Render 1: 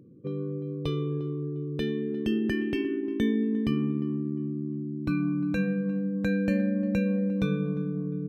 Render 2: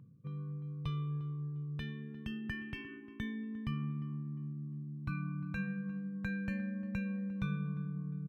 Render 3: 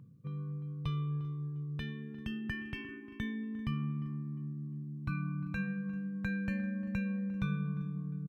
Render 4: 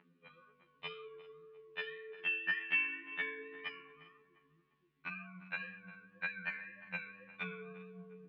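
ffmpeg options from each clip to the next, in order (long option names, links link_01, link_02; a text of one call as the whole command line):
ffmpeg -i in.wav -af "firequalizer=gain_entry='entry(140,0);entry(330,-23);entry(1000,0);entry(4300,-9)':delay=0.05:min_phase=1,areverse,acompressor=mode=upward:threshold=-39dB:ratio=2.5,areverse,volume=-4dB" out.wav
ffmpeg -i in.wav -af "aecho=1:1:392:0.0794,volume=2dB" out.wav
ffmpeg -i in.wav -af "highpass=frequency=360:width=0.5412,highpass=frequency=360:width=1.3066,equalizer=frequency=360:width_type=q:width=4:gain=-8,equalizer=frequency=510:width_type=q:width=4:gain=-8,equalizer=frequency=730:width_type=q:width=4:gain=-4,equalizer=frequency=1100:width_type=q:width=4:gain=-7,equalizer=frequency=1900:width_type=q:width=4:gain=4,equalizer=frequency=2700:width_type=q:width=4:gain=4,lowpass=frequency=3300:width=0.5412,lowpass=frequency=3300:width=1.3066,flanger=delay=4.5:depth=2.6:regen=83:speed=1.9:shape=triangular,afftfilt=real='re*2*eq(mod(b,4),0)':imag='im*2*eq(mod(b,4),0)':win_size=2048:overlap=0.75,volume=17dB" out.wav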